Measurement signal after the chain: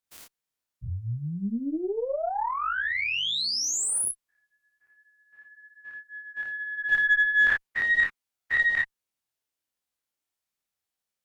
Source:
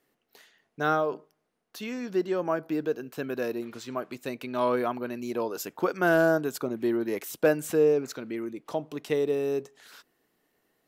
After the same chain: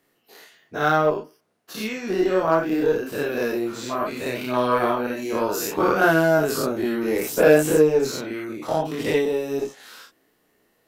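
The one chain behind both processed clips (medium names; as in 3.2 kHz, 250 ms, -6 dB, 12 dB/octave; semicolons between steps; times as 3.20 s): every event in the spectrogram widened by 120 ms; chorus voices 2, 0.33 Hz, delay 29 ms, depth 4.2 ms; Chebyshev shaper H 8 -32 dB, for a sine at -9.5 dBFS; trim +5.5 dB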